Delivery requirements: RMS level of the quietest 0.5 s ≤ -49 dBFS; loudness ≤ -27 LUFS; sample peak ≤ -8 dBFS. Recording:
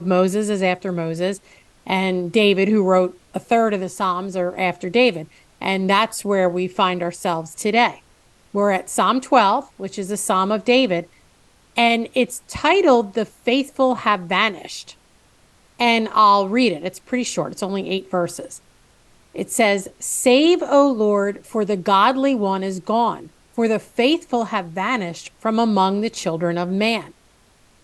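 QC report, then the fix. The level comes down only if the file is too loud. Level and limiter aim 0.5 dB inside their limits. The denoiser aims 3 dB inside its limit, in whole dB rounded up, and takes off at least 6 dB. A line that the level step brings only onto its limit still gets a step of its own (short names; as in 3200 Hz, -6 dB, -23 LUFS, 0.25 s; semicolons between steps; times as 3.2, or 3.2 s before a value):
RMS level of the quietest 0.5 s -55 dBFS: OK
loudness -19.0 LUFS: fail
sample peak -1.5 dBFS: fail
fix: gain -8.5 dB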